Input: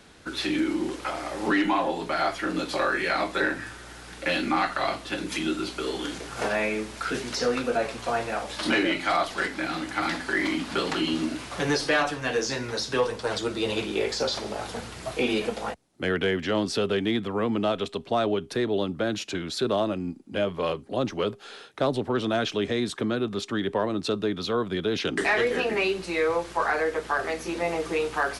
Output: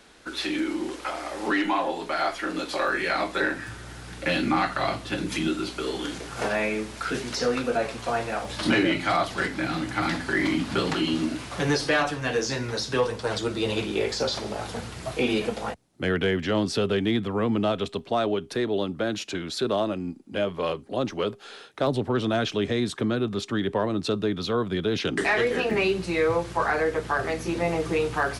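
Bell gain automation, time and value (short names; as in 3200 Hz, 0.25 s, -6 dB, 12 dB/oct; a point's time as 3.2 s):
bell 110 Hz 1.7 oct
-9 dB
from 2.88 s 0 dB
from 3.68 s +10.5 dB
from 5.48 s +3.5 dB
from 8.45 s +12 dB
from 10.94 s +5.5 dB
from 17.99 s -1 dB
from 21.87 s +5 dB
from 25.71 s +14 dB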